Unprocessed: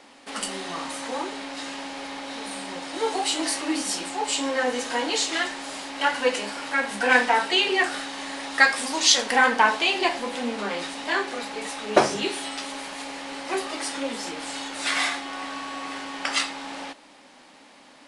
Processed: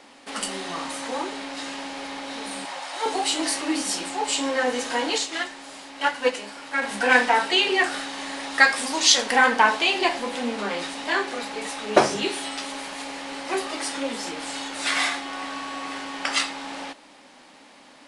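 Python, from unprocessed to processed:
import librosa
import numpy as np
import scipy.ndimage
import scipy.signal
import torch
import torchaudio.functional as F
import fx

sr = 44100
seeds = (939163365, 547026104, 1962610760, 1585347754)

y = fx.low_shelf_res(x, sr, hz=490.0, db=-13.5, q=1.5, at=(2.65, 3.06))
y = fx.upward_expand(y, sr, threshold_db=-31.0, expansion=1.5, at=(5.18, 6.82))
y = y * librosa.db_to_amplitude(1.0)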